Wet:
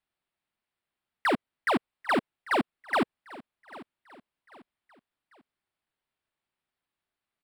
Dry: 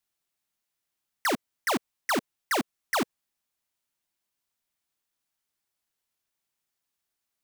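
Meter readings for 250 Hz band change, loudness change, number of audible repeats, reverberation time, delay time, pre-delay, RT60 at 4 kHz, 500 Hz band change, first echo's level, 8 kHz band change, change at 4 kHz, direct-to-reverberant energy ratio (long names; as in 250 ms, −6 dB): +2.0 dB, +0.5 dB, 2, no reverb audible, 794 ms, no reverb audible, no reverb audible, +2.0 dB, −19.5 dB, −14.5 dB, −4.0 dB, no reverb audible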